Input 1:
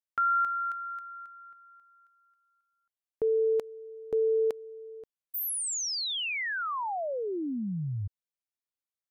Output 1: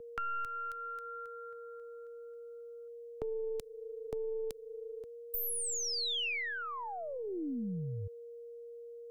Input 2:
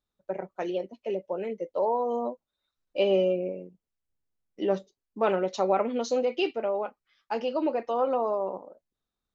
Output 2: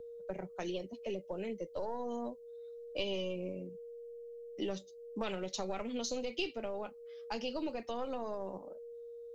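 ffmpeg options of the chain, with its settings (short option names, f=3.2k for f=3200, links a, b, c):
-filter_complex "[0:a]highshelf=f=3.7k:g=8,aeval=exprs='val(0)+0.00562*sin(2*PI*470*n/s)':c=same,aeval=exprs='0.282*(cos(1*acos(clip(val(0)/0.282,-1,1)))-cos(1*PI/2))+0.0316*(cos(2*acos(clip(val(0)/0.282,-1,1)))-cos(2*PI/2))':c=same,lowshelf=f=120:g=11,acrossover=split=250|2800[a][b][c];[a]acompressor=threshold=-41dB:ratio=4[d];[b]acompressor=threshold=-40dB:ratio=4[e];[c]acompressor=threshold=-37dB:ratio=4[f];[d][e][f]amix=inputs=3:normalize=0,volume=-1dB"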